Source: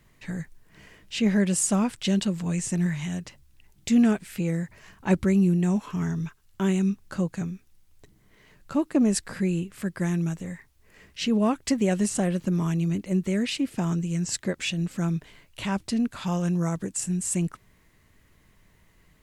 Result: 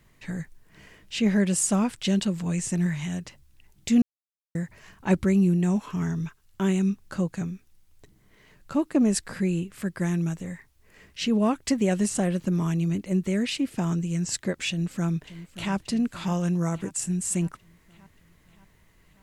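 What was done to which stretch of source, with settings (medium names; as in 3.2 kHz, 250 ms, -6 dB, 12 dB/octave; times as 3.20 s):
4.02–4.55 s: mute
14.69–15.74 s: echo throw 580 ms, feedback 60%, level -14 dB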